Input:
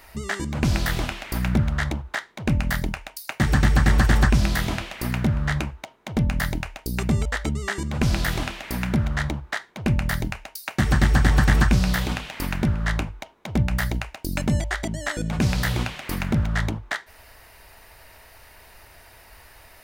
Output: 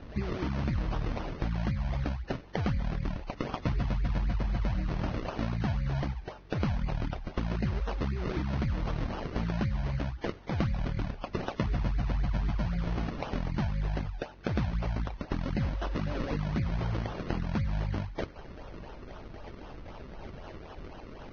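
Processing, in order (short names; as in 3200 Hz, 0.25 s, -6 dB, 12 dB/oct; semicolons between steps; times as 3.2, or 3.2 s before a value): spectral gate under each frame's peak -25 dB strong; Chebyshev band-stop 980–3000 Hz, order 2; high shelf 3600 Hz +4 dB; in parallel at 0 dB: limiter -22.5 dBFS, peak gain reduction 14.5 dB; on the sum: compressor 5:1, threshold -28 dBFS, peak gain reduction 14.5 dB; hum 50 Hz, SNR 23 dB; varispeed -7%; decimation with a swept rate 38×, swing 100% 3.9 Hz; air absorption 190 m; thin delay 95 ms, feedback 74%, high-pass 1400 Hz, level -21.5 dB; Vorbis 16 kbps 16000 Hz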